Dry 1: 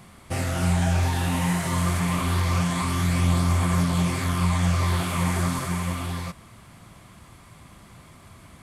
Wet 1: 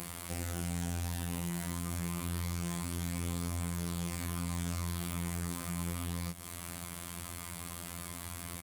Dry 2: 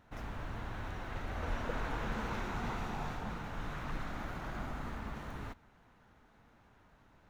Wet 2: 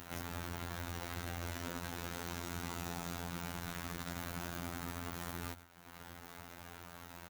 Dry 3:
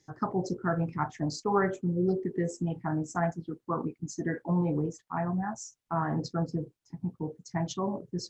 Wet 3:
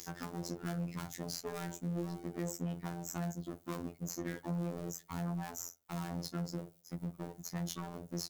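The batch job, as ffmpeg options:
-filter_complex "[0:a]aeval=exprs='if(lt(val(0),0),0.251*val(0),val(0))':c=same,agate=range=-10dB:threshold=-57dB:ratio=16:detection=peak,highpass=55,aemphasis=mode=production:type=75fm,acompressor=mode=upward:threshold=-34dB:ratio=2.5,alimiter=limit=-18dB:level=0:latency=1,acrossover=split=98|410|4100[a][b][c][d];[a]acompressor=threshold=-50dB:ratio=4[e];[b]acompressor=threshold=-40dB:ratio=4[f];[c]acompressor=threshold=-46dB:ratio=4[g];[d]acompressor=threshold=-45dB:ratio=4[h];[e][f][g][h]amix=inputs=4:normalize=0,asoftclip=type=tanh:threshold=-36.5dB,afftfilt=real='hypot(re,im)*cos(PI*b)':imag='0':win_size=2048:overlap=0.75,asplit=2[i][j];[j]adelay=71,lowpass=f=1.8k:p=1,volume=-21.5dB,asplit=2[k][l];[l]adelay=71,lowpass=f=1.8k:p=1,volume=0.4,asplit=2[m][n];[n]adelay=71,lowpass=f=1.8k:p=1,volume=0.4[o];[k][m][o]amix=inputs=3:normalize=0[p];[i][p]amix=inputs=2:normalize=0,volume=6dB"

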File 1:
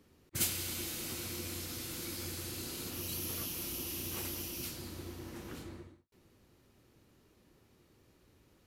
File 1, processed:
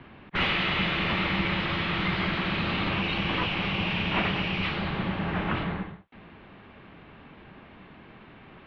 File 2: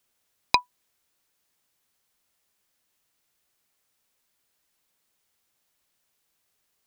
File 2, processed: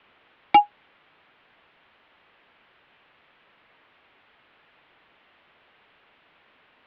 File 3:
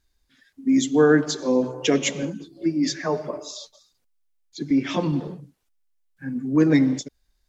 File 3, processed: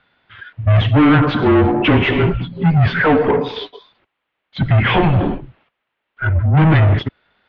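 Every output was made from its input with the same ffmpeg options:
-filter_complex "[0:a]asplit=2[a][b];[b]highpass=f=720:p=1,volume=34dB,asoftclip=type=tanh:threshold=-1dB[c];[a][c]amix=inputs=2:normalize=0,lowpass=f=2.4k:p=1,volume=-6dB,highpass=f=170:t=q:w=0.5412,highpass=f=170:t=q:w=1.307,lowpass=f=3.4k:t=q:w=0.5176,lowpass=f=3.4k:t=q:w=0.7071,lowpass=f=3.4k:t=q:w=1.932,afreqshift=-160,volume=-2.5dB"

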